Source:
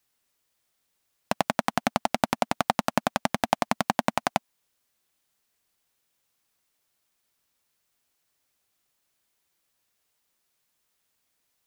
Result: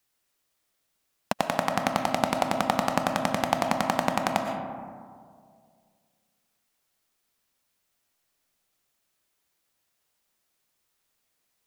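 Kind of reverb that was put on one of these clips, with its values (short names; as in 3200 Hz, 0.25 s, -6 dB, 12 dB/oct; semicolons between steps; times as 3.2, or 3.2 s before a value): digital reverb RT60 2.1 s, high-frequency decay 0.3×, pre-delay 75 ms, DRR 4 dB; gain -1 dB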